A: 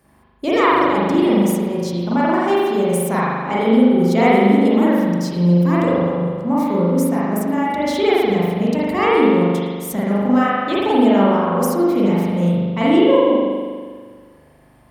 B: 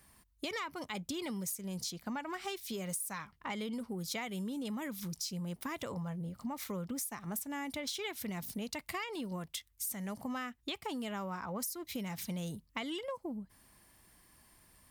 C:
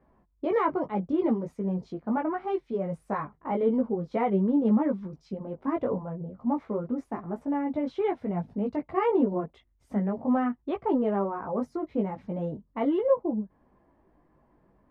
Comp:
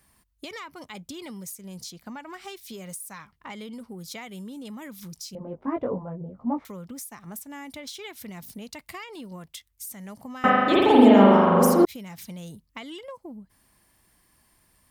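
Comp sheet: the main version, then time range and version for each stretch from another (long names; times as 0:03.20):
B
0:05.35–0:06.65: punch in from C
0:10.44–0:11.85: punch in from A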